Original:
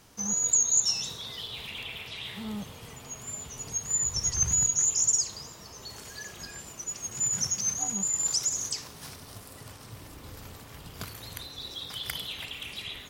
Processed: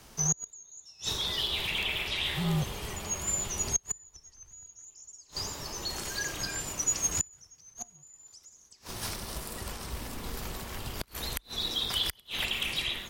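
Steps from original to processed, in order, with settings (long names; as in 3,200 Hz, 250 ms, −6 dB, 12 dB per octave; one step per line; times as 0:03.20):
automatic gain control gain up to 4 dB
gate with flip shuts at −19 dBFS, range −33 dB
frequency shifter −50 Hz
level +3.5 dB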